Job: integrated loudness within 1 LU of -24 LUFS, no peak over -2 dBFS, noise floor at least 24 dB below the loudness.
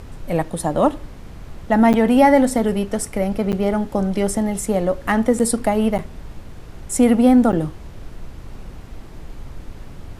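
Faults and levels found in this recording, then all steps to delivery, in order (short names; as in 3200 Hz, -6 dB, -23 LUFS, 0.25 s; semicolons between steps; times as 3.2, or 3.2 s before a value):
dropouts 5; longest dropout 8.6 ms; noise floor -38 dBFS; noise floor target -43 dBFS; loudness -18.5 LUFS; peak -2.5 dBFS; loudness target -24.0 LUFS
-> interpolate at 1.93/3.52/5.39/5.98/7.52, 8.6 ms; noise print and reduce 6 dB; gain -5.5 dB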